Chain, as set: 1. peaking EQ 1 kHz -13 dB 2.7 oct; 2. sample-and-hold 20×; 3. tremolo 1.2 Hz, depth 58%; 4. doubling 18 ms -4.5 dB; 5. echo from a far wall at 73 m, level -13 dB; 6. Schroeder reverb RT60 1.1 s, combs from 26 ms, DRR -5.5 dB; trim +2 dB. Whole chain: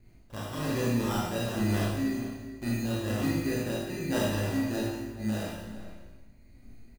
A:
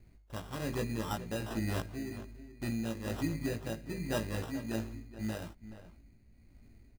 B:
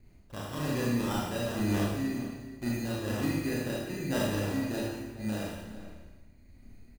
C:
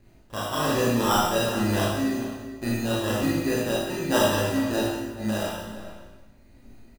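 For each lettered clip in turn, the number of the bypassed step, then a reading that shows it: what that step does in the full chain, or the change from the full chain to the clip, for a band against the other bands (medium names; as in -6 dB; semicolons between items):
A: 6, loudness change -7.0 LU; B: 4, loudness change -1.5 LU; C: 1, 125 Hz band -7.0 dB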